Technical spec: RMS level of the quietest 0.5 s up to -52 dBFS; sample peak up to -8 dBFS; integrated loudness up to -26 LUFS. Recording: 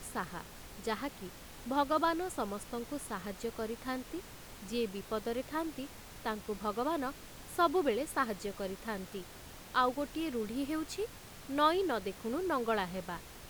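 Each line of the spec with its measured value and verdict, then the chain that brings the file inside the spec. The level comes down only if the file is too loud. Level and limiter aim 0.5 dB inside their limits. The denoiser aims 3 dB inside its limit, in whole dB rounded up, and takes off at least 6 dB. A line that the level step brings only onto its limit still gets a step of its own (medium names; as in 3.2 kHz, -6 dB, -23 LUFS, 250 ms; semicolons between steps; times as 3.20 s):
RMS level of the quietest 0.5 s -50 dBFS: fail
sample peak -16.0 dBFS: pass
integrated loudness -36.0 LUFS: pass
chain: noise reduction 6 dB, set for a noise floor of -50 dBFS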